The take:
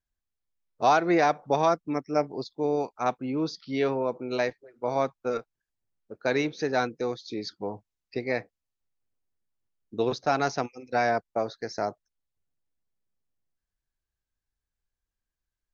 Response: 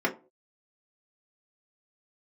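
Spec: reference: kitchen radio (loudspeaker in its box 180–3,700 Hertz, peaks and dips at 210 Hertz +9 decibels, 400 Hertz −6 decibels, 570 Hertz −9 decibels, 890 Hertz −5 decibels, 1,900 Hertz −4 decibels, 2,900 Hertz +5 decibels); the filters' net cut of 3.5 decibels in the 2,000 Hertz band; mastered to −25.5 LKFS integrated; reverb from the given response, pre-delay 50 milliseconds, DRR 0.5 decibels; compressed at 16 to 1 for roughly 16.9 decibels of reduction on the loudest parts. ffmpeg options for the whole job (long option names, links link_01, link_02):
-filter_complex "[0:a]equalizer=frequency=2000:width_type=o:gain=-3,acompressor=threshold=-34dB:ratio=16,asplit=2[link_01][link_02];[1:a]atrim=start_sample=2205,adelay=50[link_03];[link_02][link_03]afir=irnorm=-1:irlink=0,volume=-12dB[link_04];[link_01][link_04]amix=inputs=2:normalize=0,highpass=180,equalizer=frequency=210:width_type=q:width=4:gain=9,equalizer=frequency=400:width_type=q:width=4:gain=-6,equalizer=frequency=570:width_type=q:width=4:gain=-9,equalizer=frequency=890:width_type=q:width=4:gain=-5,equalizer=frequency=1900:width_type=q:width=4:gain=-4,equalizer=frequency=2900:width_type=q:width=4:gain=5,lowpass=frequency=3700:width=0.5412,lowpass=frequency=3700:width=1.3066,volume=13.5dB"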